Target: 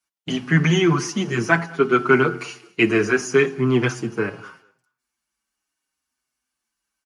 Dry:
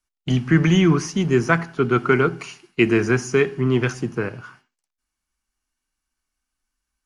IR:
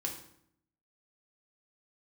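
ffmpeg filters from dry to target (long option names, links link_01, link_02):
-filter_complex "[0:a]highpass=65,lowshelf=frequency=130:gain=-11,bandreject=frequency=90.12:width_type=h:width=4,bandreject=frequency=180.24:width_type=h:width=4,bandreject=frequency=270.36:width_type=h:width=4,bandreject=frequency=360.48:width_type=h:width=4,bandreject=frequency=450.6:width_type=h:width=4,bandreject=frequency=540.72:width_type=h:width=4,bandreject=frequency=630.84:width_type=h:width=4,bandreject=frequency=720.96:width_type=h:width=4,bandreject=frequency=811.08:width_type=h:width=4,bandreject=frequency=901.2:width_type=h:width=4,bandreject=frequency=991.32:width_type=h:width=4,bandreject=frequency=1081.44:width_type=h:width=4,bandreject=frequency=1171.56:width_type=h:width=4,bandreject=frequency=1261.68:width_type=h:width=4,bandreject=frequency=1351.8:width_type=h:width=4,bandreject=frequency=1441.92:width_type=h:width=4,asplit=2[link_01][link_02];[link_02]aecho=0:1:209|418:0.0631|0.0145[link_03];[link_01][link_03]amix=inputs=2:normalize=0,asplit=2[link_04][link_05];[link_05]adelay=6.6,afreqshift=-0.73[link_06];[link_04][link_06]amix=inputs=2:normalize=1,volume=5dB"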